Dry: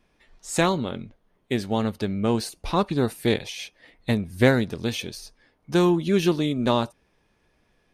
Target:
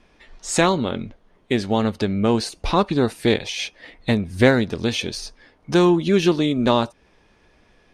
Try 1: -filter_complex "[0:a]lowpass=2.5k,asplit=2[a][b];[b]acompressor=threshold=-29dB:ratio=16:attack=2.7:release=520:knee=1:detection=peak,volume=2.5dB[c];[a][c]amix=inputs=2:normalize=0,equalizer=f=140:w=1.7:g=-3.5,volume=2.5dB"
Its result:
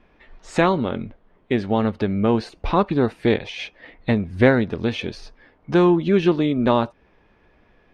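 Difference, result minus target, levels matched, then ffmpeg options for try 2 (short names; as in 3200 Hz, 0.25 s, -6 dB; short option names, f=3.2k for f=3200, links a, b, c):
8000 Hz band -16.0 dB
-filter_complex "[0:a]lowpass=7.5k,asplit=2[a][b];[b]acompressor=threshold=-29dB:ratio=16:attack=2.7:release=520:knee=1:detection=peak,volume=2.5dB[c];[a][c]amix=inputs=2:normalize=0,equalizer=f=140:w=1.7:g=-3.5,volume=2.5dB"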